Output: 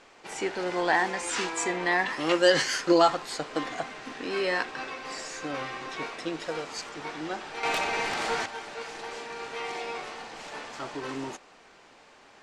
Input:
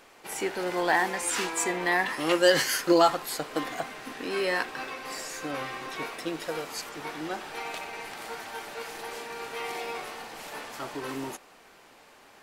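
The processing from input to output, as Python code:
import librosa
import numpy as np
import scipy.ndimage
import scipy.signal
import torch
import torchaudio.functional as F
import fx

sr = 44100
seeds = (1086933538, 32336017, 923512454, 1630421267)

y = scipy.signal.sosfilt(scipy.signal.butter(4, 7700.0, 'lowpass', fs=sr, output='sos'), x)
y = fx.fold_sine(y, sr, drive_db=7, ceiling_db=-22.0, at=(7.63, 8.46))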